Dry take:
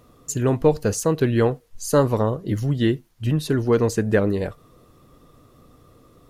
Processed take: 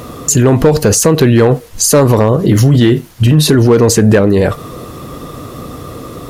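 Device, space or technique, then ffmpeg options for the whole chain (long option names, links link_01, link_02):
loud club master: -filter_complex "[0:a]highpass=frequency=72:poles=1,asettb=1/sr,asplit=3[link_01][link_02][link_03];[link_01]atrim=end=2.424[link_04];[link_02]atrim=start=2.42:end=3.55,asetpts=PTS-STARTPTS,afade=type=in:duration=0.004:curve=qsin,afade=type=out:start_time=1.126:duration=0.004:curve=qsin,asplit=2[link_05][link_06];[link_06]adelay=33,volume=-12dB[link_07];[link_05][link_07]amix=inputs=2:normalize=0,atrim=end_sample=49833[link_08];[link_03]atrim=start=3.546[link_09];[link_04][link_08]acrossfade=duration=0.004:curve1=hsin:curve2=qsin[link_10];[link_10][link_09]acrossfade=duration=0.004:curve1=qsin:curve2=hsin,acompressor=threshold=-22dB:ratio=2,asoftclip=type=hard:threshold=-16.5dB,alimiter=level_in=27dB:limit=-1dB:release=50:level=0:latency=1,volume=-1dB"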